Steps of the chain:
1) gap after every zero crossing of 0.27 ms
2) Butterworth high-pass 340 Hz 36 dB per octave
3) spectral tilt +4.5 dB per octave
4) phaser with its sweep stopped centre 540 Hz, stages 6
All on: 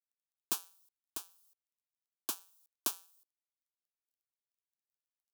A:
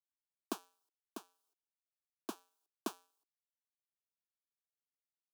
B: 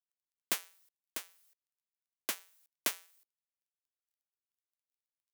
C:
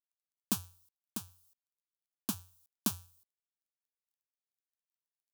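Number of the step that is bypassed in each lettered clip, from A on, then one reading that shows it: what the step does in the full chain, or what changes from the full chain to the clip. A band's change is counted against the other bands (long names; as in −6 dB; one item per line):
3, 8 kHz band −13.0 dB
4, 2 kHz band +9.5 dB
2, 250 Hz band +14.5 dB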